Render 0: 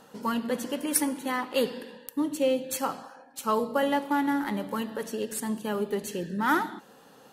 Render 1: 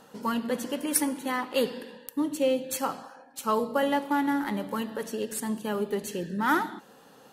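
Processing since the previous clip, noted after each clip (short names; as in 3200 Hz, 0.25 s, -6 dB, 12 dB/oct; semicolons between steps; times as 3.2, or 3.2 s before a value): nothing audible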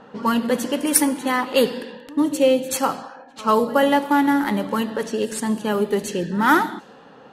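reverse echo 86 ms -21.5 dB; low-pass opened by the level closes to 2300 Hz, open at -25.5 dBFS; gain +8.5 dB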